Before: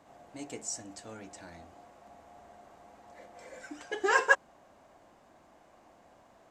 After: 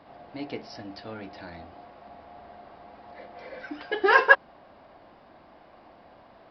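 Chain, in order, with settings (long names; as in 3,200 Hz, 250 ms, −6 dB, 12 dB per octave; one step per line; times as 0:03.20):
downsampling to 11,025 Hz
level +7 dB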